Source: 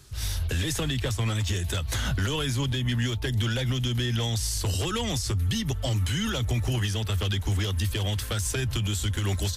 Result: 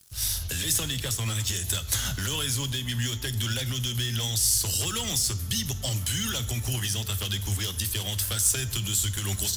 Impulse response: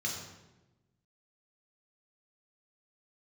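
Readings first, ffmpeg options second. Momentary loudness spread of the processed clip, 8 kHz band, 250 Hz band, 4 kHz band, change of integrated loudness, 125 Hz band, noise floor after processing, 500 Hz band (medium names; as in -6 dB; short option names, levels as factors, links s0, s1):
6 LU, +8.5 dB, -5.5 dB, +2.5 dB, +1.0 dB, -4.0 dB, -35 dBFS, -6.5 dB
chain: -filter_complex "[0:a]aeval=exprs='sgn(val(0))*max(abs(val(0))-0.00299,0)':c=same,crystalizer=i=5:c=0,asplit=2[s0][s1];[1:a]atrim=start_sample=2205[s2];[s1][s2]afir=irnorm=-1:irlink=0,volume=0.168[s3];[s0][s3]amix=inputs=2:normalize=0,volume=0.531"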